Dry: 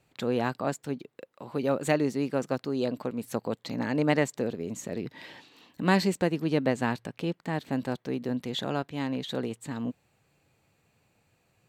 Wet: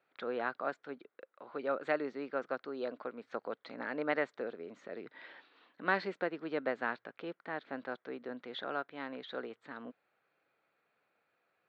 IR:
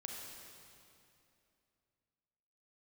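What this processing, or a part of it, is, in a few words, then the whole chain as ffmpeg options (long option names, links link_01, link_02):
phone earpiece: -af "highpass=450,equalizer=frequency=890:width_type=q:width=4:gain=-4,equalizer=frequency=1400:width_type=q:width=4:gain=8,equalizer=frequency=2800:width_type=q:width=4:gain=-7,lowpass=frequency=3400:width=0.5412,lowpass=frequency=3400:width=1.3066,volume=-5dB"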